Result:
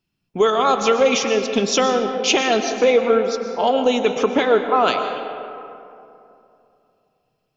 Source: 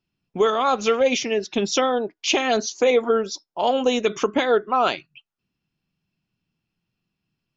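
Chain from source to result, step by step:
high-shelf EQ 6,400 Hz +3.5 dB, from 0:02.48 −8.5 dB, from 0:04.88 +5.5 dB
convolution reverb RT60 2.8 s, pre-delay 80 ms, DRR 6.5 dB
level +2.5 dB

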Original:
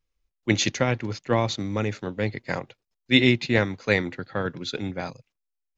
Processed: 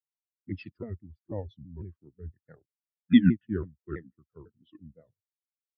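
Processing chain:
pitch shifter swept by a sawtooth −7 semitones, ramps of 165 ms
every bin expanded away from the loudest bin 2.5 to 1
level −3 dB

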